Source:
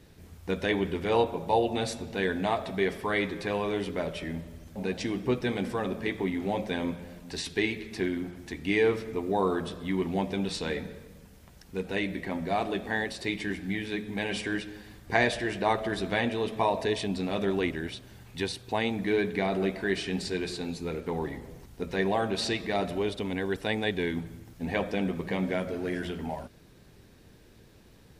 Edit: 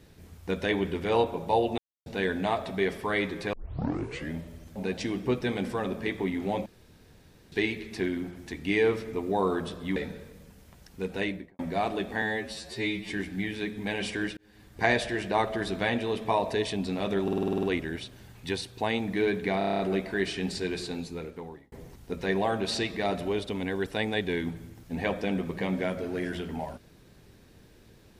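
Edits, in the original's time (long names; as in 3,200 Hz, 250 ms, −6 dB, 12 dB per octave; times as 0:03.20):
0:01.78–0:02.06: silence
0:03.53: tape start 0.78 s
0:06.66–0:07.52: fill with room tone
0:09.96–0:10.71: remove
0:11.97–0:12.34: fade out and dull
0:12.97–0:13.41: time-stretch 2×
0:14.68–0:15.14: fade in
0:17.54: stutter 0.05 s, 9 plays
0:19.49: stutter 0.03 s, 8 plays
0:20.62–0:21.42: fade out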